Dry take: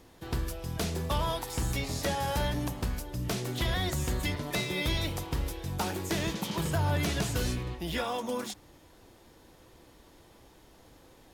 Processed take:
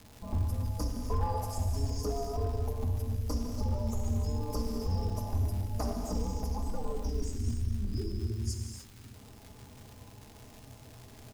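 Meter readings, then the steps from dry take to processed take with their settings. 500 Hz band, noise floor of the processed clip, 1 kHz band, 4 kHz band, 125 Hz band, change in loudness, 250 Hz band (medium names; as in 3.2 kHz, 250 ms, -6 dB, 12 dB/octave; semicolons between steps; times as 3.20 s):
-3.5 dB, -53 dBFS, -5.0 dB, -13.0 dB, +1.0 dB, -2.5 dB, -3.0 dB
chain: time-frequency box 7.05–9.13 s, 570–2200 Hz -27 dB; elliptic band-stop 1.3–5 kHz; spectral gate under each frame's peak -25 dB strong; bass shelf 350 Hz +5 dB; comb 5.1 ms, depth 91%; gain riding 0.5 s; frequency shift -140 Hz; crackle 230 per s -35 dBFS; hard clipper -20 dBFS, distortion -19 dB; gated-style reverb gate 330 ms flat, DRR 2 dB; trim -6 dB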